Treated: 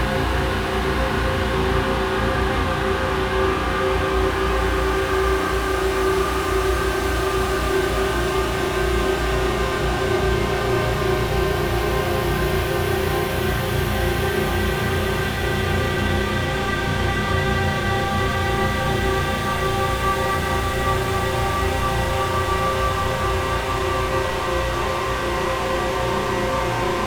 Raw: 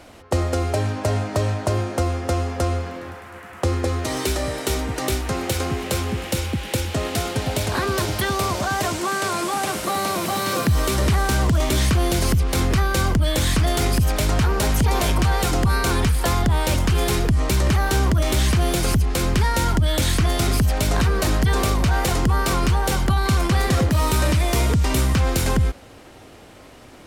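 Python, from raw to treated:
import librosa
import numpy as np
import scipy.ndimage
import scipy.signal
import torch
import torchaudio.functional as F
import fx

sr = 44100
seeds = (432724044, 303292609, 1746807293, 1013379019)

y = 10.0 ** (-28.0 / 20.0) * np.tanh(x / 10.0 ** (-28.0 / 20.0))
y = fx.rev_spring(y, sr, rt60_s=1.4, pass_ms=(34,), chirp_ms=75, drr_db=-8.5)
y = fx.paulstretch(y, sr, seeds[0], factor=33.0, window_s=0.25, from_s=7.79)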